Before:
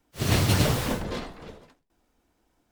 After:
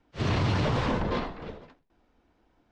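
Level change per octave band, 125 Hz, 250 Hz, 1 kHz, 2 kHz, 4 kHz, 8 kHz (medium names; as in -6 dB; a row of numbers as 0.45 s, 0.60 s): -2.5 dB, -1.5 dB, +1.5 dB, -2.5 dB, -6.5 dB, -17.0 dB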